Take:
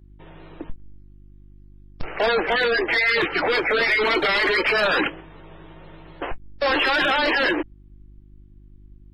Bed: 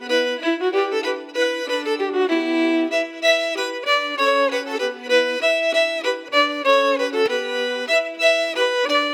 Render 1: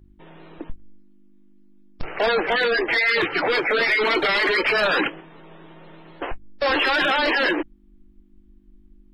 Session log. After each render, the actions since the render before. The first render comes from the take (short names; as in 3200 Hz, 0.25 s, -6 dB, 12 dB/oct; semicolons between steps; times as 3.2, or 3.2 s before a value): de-hum 50 Hz, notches 3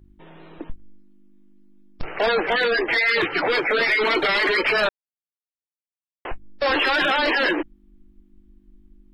4.89–6.25 mute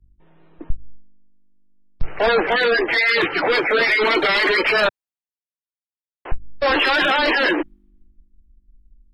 in parallel at -2.5 dB: limiter -20 dBFS, peak gain reduction 7.5 dB; on the sum: three-band expander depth 70%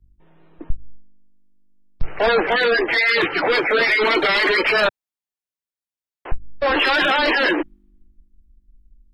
6.3–6.77 air absorption 170 m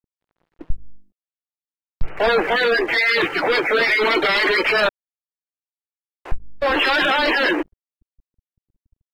crossover distortion -44 dBFS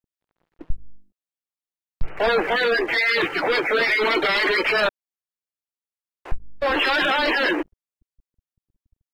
gain -2.5 dB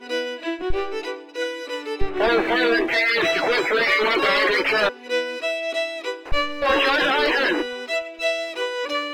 add bed -6.5 dB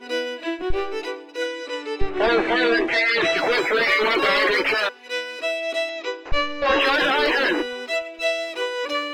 1.46–3.37 LPF 8900 Hz 24 dB/oct; 4.74–5.39 HPF 1000 Hz 6 dB/oct; 5.89–6.81 steep low-pass 7300 Hz 96 dB/oct